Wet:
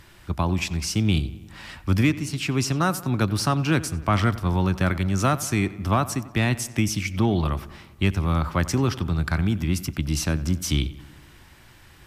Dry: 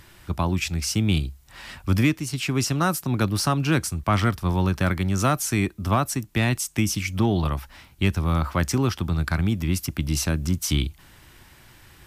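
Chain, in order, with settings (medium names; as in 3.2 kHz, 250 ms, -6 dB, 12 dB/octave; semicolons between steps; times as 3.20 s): treble shelf 9.8 kHz -6.5 dB; filtered feedback delay 92 ms, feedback 63%, low-pass 3.6 kHz, level -17 dB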